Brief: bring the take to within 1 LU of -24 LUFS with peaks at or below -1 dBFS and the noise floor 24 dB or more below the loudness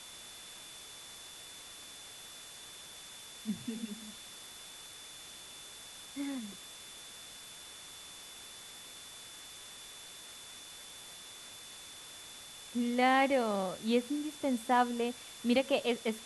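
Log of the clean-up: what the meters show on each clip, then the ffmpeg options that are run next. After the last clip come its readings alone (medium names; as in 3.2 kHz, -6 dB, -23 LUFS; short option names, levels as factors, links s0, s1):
steady tone 3.5 kHz; tone level -52 dBFS; noise floor -50 dBFS; noise floor target -62 dBFS; loudness -37.5 LUFS; peak level -16.5 dBFS; loudness target -24.0 LUFS
-> -af "bandreject=f=3500:w=30"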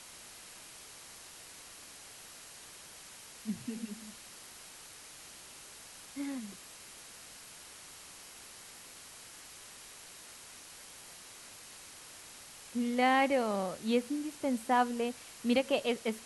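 steady tone not found; noise floor -52 dBFS; noise floor target -57 dBFS
-> -af "afftdn=nr=6:nf=-52"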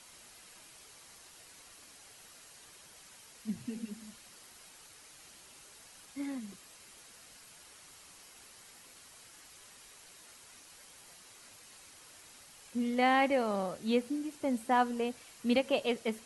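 noise floor -56 dBFS; noise floor target -57 dBFS
-> -af "afftdn=nr=6:nf=-56"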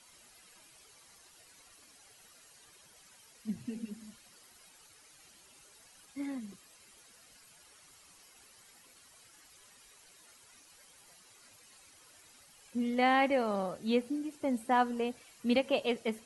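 noise floor -60 dBFS; loudness -33.0 LUFS; peak level -16.5 dBFS; loudness target -24.0 LUFS
-> -af "volume=2.82"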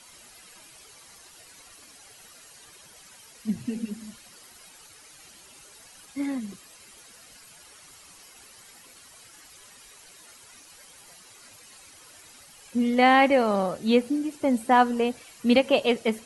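loudness -24.0 LUFS; peak level -7.5 dBFS; noise floor -51 dBFS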